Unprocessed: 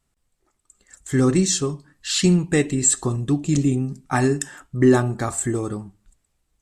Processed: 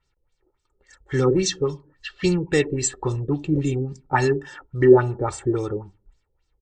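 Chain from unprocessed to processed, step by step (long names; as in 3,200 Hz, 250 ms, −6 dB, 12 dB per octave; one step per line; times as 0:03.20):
low-pass filter 8,500 Hz 12 dB per octave
comb filter 2.2 ms, depth 64%
auto-filter low-pass sine 3.6 Hz 420–6,200 Hz
level −2.5 dB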